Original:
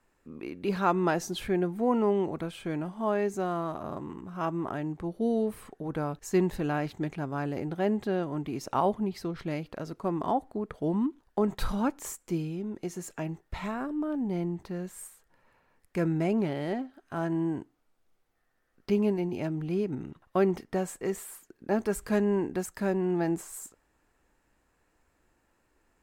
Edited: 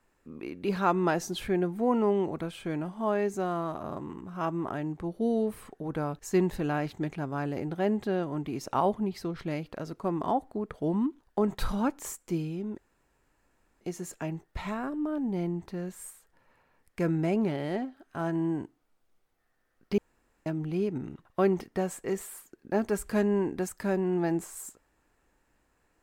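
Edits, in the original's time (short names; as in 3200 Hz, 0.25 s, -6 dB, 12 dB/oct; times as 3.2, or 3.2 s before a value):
12.78 insert room tone 1.03 s
18.95–19.43 room tone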